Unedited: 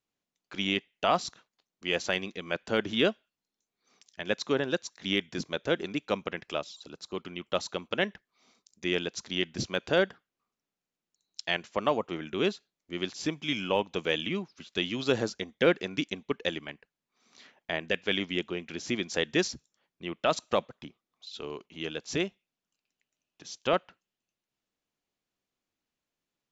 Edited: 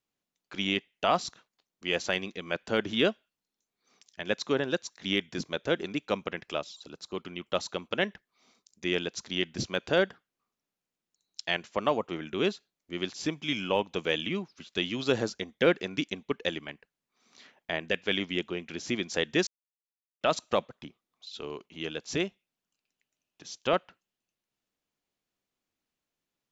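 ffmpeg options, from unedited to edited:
ffmpeg -i in.wav -filter_complex "[0:a]asplit=3[link_01][link_02][link_03];[link_01]atrim=end=19.47,asetpts=PTS-STARTPTS,afade=type=out:start_time=19.466:duration=0.004:curve=hsin[link_04];[link_02]atrim=start=19.47:end=20.21,asetpts=PTS-STARTPTS,volume=0[link_05];[link_03]atrim=start=20.21,asetpts=PTS-STARTPTS,afade=type=in:duration=0.004:curve=hsin[link_06];[link_04][link_05][link_06]concat=n=3:v=0:a=1" out.wav

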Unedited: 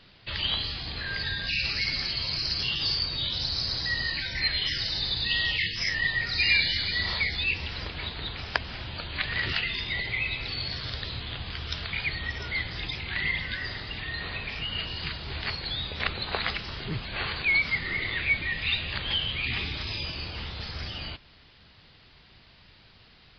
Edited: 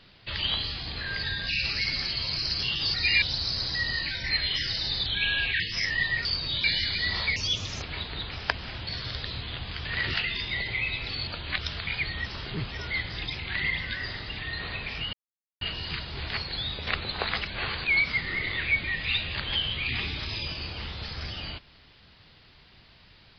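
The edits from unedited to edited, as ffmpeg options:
ffmpeg -i in.wav -filter_complex "[0:a]asplit=17[link_01][link_02][link_03][link_04][link_05][link_06][link_07][link_08][link_09][link_10][link_11][link_12][link_13][link_14][link_15][link_16][link_17];[link_01]atrim=end=2.942[link_18];[link_02]atrim=start=6.288:end=6.572[link_19];[link_03]atrim=start=3.328:end=5.174[link_20];[link_04]atrim=start=5.17:end=5.64,asetpts=PTS-STARTPTS,asetrate=38367,aresample=44100,atrim=end_sample=23824,asetpts=PTS-STARTPTS[link_21];[link_05]atrim=start=5.636:end=6.292[link_22];[link_06]atrim=start=2.938:end=3.332[link_23];[link_07]atrim=start=6.568:end=7.294[link_24];[link_08]atrim=start=7.29:end=7.88,asetpts=PTS-STARTPTS,asetrate=56448,aresample=44100,atrim=end_sample=20327,asetpts=PTS-STARTPTS[link_25];[link_09]atrim=start=7.876:end=8.932[link_26];[link_10]atrim=start=10.658:end=11.642[link_27];[link_11]atrim=start=9.238:end=10.662[link_28];[link_12]atrim=start=8.928:end=9.242[link_29];[link_13]atrim=start=11.638:end=12.322[link_30];[link_14]atrim=start=16.598:end=17.052[link_31];[link_15]atrim=start=12.318:end=14.74,asetpts=PTS-STARTPTS,afade=type=out:start_time=2.418:duration=0.004:curve=hsin,apad=pad_dur=0.48[link_32];[link_16]atrim=start=14.74:end=16.602,asetpts=PTS-STARTPTS,afade=type=in:duration=0.004:curve=hsin[link_33];[link_17]atrim=start=17.048[link_34];[link_18][link_19]acrossfade=duration=0.004:curve1=hsin:curve2=hsin[link_35];[link_35][link_20]acrossfade=duration=0.004:curve1=hsin:curve2=hsin[link_36];[link_36][link_21]acrossfade=duration=0.004:curve1=hsin:curve2=hsin[link_37];[link_37][link_22]acrossfade=duration=0.004:curve1=hsin:curve2=hsin[link_38];[link_38][link_23]acrossfade=duration=0.004:curve1=hsin:curve2=hsin[link_39];[link_39][link_24]acrossfade=duration=0.004:curve1=hsin:curve2=hsin[link_40];[link_40][link_25]acrossfade=duration=0.004:curve1=hsin:curve2=hsin[link_41];[link_41][link_26]acrossfade=duration=0.004:curve1=hsin:curve2=hsin[link_42];[link_42][link_27]acrossfade=duration=0.004:curve1=hsin:curve2=hsin[link_43];[link_43][link_28]acrossfade=duration=0.004:curve1=hsin:curve2=hsin[link_44];[link_44][link_29]acrossfade=duration=0.004:curve1=hsin:curve2=hsin[link_45];[link_45][link_30]acrossfade=duration=0.004:curve1=hsin:curve2=hsin[link_46];[link_46][link_31]acrossfade=duration=0.004:curve1=hsin:curve2=hsin[link_47];[link_32][link_33]concat=n=2:v=0:a=1[link_48];[link_47][link_48]acrossfade=duration=0.004:curve1=hsin:curve2=hsin[link_49];[link_49][link_34]acrossfade=duration=0.004:curve1=hsin:curve2=hsin" out.wav

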